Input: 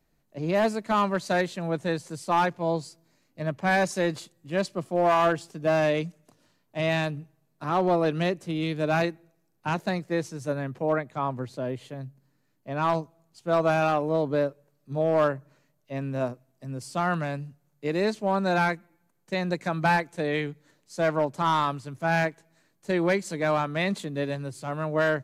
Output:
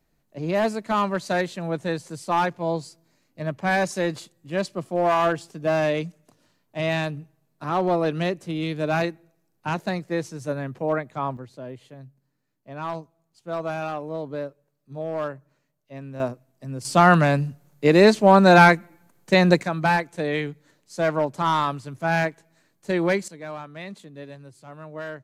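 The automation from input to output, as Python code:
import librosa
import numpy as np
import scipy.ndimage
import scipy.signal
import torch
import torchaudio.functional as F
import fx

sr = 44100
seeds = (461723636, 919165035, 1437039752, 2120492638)

y = fx.gain(x, sr, db=fx.steps((0.0, 1.0), (11.37, -6.0), (16.2, 2.5), (16.85, 11.5), (19.63, 2.0), (23.28, -10.5)))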